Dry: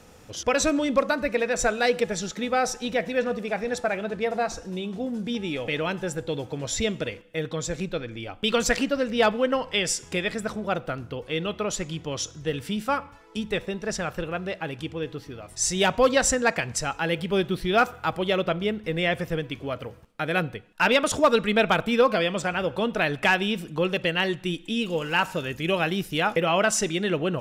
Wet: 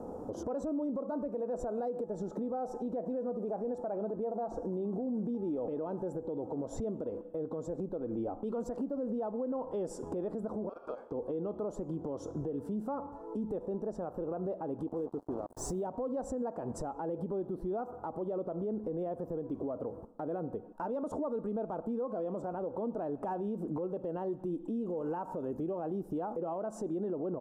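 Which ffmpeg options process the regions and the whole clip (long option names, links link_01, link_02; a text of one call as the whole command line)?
ffmpeg -i in.wav -filter_complex "[0:a]asettb=1/sr,asplit=3[link_01][link_02][link_03];[link_01]atrim=end=10.694[link_04];[link_02]atrim=start=10.69:end=11.12,asetpts=PTS-STARTPTS,afade=type=in:duration=0.004:curve=qsin,afade=type=out:start_time=0.426:duration=0.004:curve=qsin,highpass=430,lowpass=7100,aeval=exprs='val(0)*sin(2*PI*1900*n/s)':channel_layout=same,acompressor=threshold=-38dB:ratio=2.5:attack=3.2:release=140:knee=1:detection=peak[link_05];[link_03]atrim=start=11.116[link_06];[link_04][link_05]acrossfade=duration=0.004:curve1=hsin:curve2=qsin[link_07];[link_07][link_06]acrossfade=duration=0.004:curve1=qsin:curve2=hsin,asettb=1/sr,asplit=3[link_08][link_09][link_10];[link_08]atrim=end=14.874[link_11];[link_09]atrim=start=14.87:end=15.83,asetpts=PTS-STARTPTS,afade=type=in:duration=0.004:curve=qsin,afade=type=out:start_time=0.956:duration=0.004:curve=qsin,acompressor=mode=upward:threshold=-42dB:ratio=2.5:attack=3.2:release=140:knee=2.83:detection=peak,acrusher=bits=5:mix=0:aa=0.5[link_12];[link_10]atrim=start=15.826[link_13];[link_11][link_12]acrossfade=duration=0.004:curve1=hsin:curve2=qsin[link_14];[link_14][link_13]acrossfade=duration=0.004:curve1=qsin:curve2=hsin,firequalizer=gain_entry='entry(130,0);entry(250,13);entry(900,9);entry(2100,-29);entry(8000,-15)':delay=0.05:min_phase=1,acompressor=threshold=-28dB:ratio=3,alimiter=level_in=4.5dB:limit=-24dB:level=0:latency=1:release=89,volume=-4.5dB" out.wav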